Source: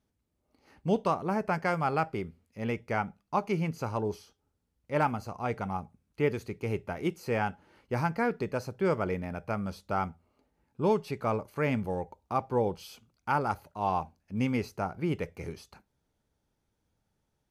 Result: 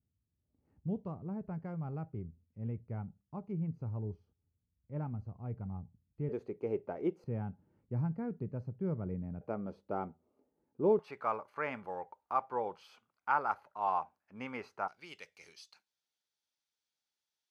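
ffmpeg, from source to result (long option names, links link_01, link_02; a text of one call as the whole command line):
ffmpeg -i in.wav -af "asetnsamples=nb_out_samples=441:pad=0,asendcmd='6.29 bandpass f 450;7.24 bandpass f 130;9.41 bandpass f 380;10.99 bandpass f 1200;14.88 bandpass f 4400',bandpass=frequency=100:width_type=q:width=1.3:csg=0" out.wav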